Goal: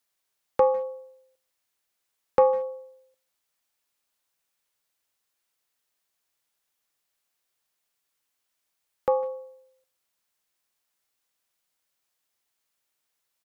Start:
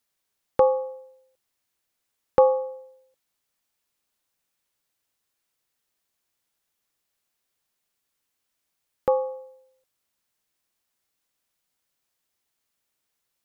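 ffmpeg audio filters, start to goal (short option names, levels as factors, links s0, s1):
-filter_complex "[0:a]acrossover=split=450[s0][s1];[s1]acontrast=36[s2];[s0][s2]amix=inputs=2:normalize=0,asplit=2[s3][s4];[s4]adelay=150,highpass=300,lowpass=3400,asoftclip=type=hard:threshold=0.282,volume=0.0794[s5];[s3][s5]amix=inputs=2:normalize=0,volume=0.531"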